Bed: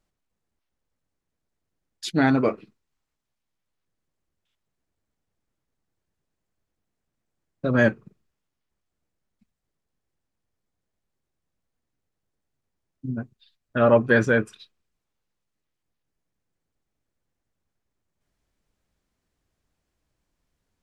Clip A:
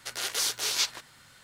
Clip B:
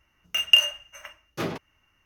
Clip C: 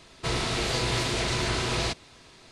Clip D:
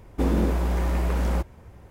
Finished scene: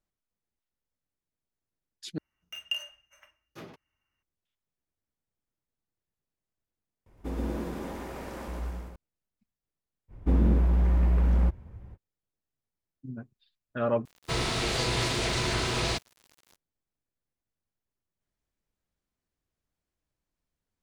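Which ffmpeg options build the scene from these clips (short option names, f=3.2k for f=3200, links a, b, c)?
-filter_complex "[4:a]asplit=2[a][b];[0:a]volume=-10dB[c];[a]aecho=1:1:120|228|325.2|412.7|491.4:0.794|0.631|0.501|0.398|0.316[d];[b]bass=f=250:g=10,treble=f=4k:g=-10[e];[3:a]aeval=exprs='val(0)*gte(abs(val(0)),0.00631)':c=same[f];[c]asplit=4[g][h][i][j];[g]atrim=end=2.184[k];[2:a]atrim=end=2.05,asetpts=PTS-STARTPTS,volume=-16dB[l];[h]atrim=start=4.226:end=7.064[m];[d]atrim=end=1.9,asetpts=PTS-STARTPTS,volume=-12dB[n];[i]atrim=start=8.956:end=14.054[o];[f]atrim=end=2.51,asetpts=PTS-STARTPTS,volume=-1dB[p];[j]atrim=start=16.556[q];[e]atrim=end=1.9,asetpts=PTS-STARTPTS,volume=-8dB,afade=t=in:d=0.05,afade=t=out:st=1.85:d=0.05,adelay=10080[r];[k][l]acrossfade=d=0.004:c1=hsin:c2=hsin[s];[s][m]acrossfade=d=0.004:c1=hsin:c2=hsin[t];[t][n]acrossfade=d=0.004:c1=hsin:c2=hsin[u];[u][o]acrossfade=d=0.004:c1=hsin:c2=hsin[v];[v][p]acrossfade=d=0.004:c1=hsin:c2=hsin[w];[w][q]acrossfade=d=0.004:c1=hsin:c2=hsin[x];[x][r]amix=inputs=2:normalize=0"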